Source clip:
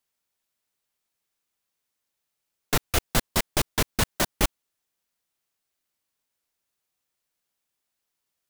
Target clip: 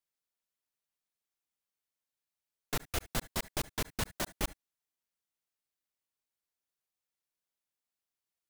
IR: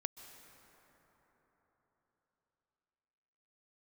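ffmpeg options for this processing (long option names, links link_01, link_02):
-filter_complex "[1:a]atrim=start_sample=2205,atrim=end_sample=6174,asetrate=79380,aresample=44100[link_01];[0:a][link_01]afir=irnorm=-1:irlink=0,volume=-3.5dB"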